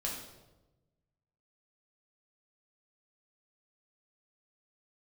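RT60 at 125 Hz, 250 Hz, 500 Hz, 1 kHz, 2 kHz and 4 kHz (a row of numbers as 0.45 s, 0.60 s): 1.7 s, 1.3 s, 1.2 s, 0.95 s, 0.75 s, 0.75 s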